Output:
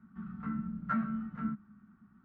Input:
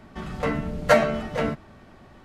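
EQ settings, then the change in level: double band-pass 530 Hz, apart 2.7 oct; tilt -3 dB/oct; -6.5 dB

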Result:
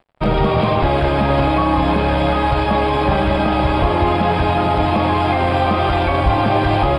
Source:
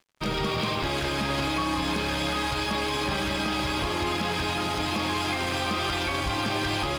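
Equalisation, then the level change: running mean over 7 samples; low shelf 190 Hz +12 dB; bell 690 Hz +11 dB 1.1 oct; +5.5 dB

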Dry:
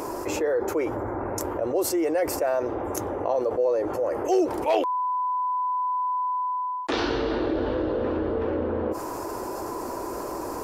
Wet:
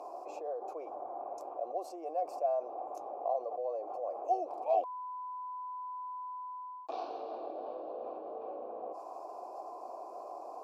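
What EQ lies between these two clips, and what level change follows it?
vowel filter a; HPF 480 Hz 6 dB/oct; band shelf 2000 Hz -13 dB; +1.0 dB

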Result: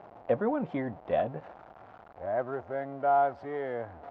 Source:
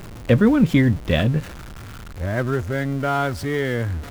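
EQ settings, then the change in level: band-pass 730 Hz, Q 3.9; air absorption 130 m; +3.0 dB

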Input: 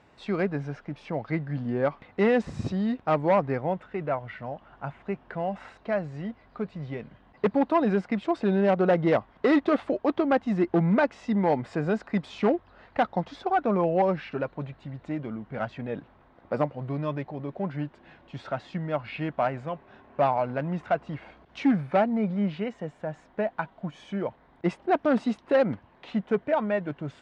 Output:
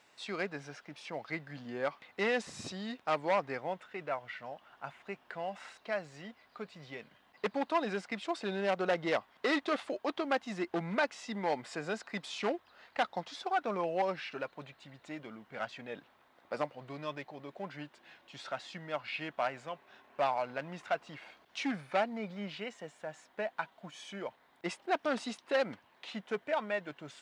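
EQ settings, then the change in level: HPF 460 Hz 6 dB/oct; high shelf 2000 Hz +9 dB; high shelf 5000 Hz +10 dB; -7.5 dB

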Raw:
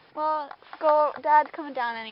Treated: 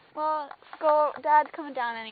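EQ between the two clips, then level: brick-wall FIR low-pass 4600 Hz; -1.5 dB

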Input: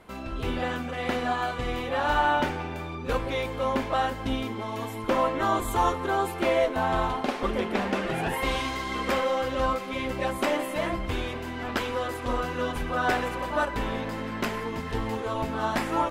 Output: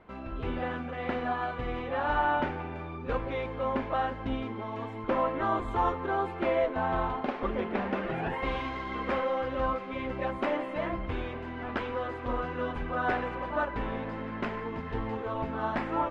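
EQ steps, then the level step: LPF 2300 Hz 12 dB/oct; -3.5 dB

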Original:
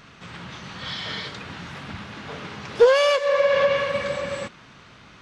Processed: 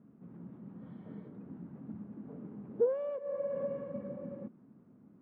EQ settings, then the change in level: ladder band-pass 280 Hz, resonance 45%; air absorption 230 m; low shelf 260 Hz +11.5 dB; -2.0 dB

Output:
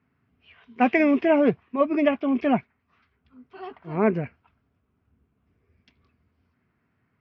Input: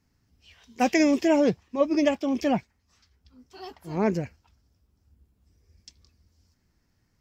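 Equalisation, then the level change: speaker cabinet 180–2300 Hz, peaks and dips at 190 Hz -6 dB, 320 Hz -9 dB, 530 Hz -9 dB, 850 Hz -8 dB, 1800 Hz -6 dB; +8.5 dB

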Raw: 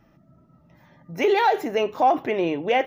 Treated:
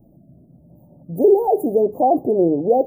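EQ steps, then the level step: Chebyshev band-stop 690–8800 Hz, order 4; Butterworth band-stop 2200 Hz, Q 1.6; notch 640 Hz, Q 12; +8.0 dB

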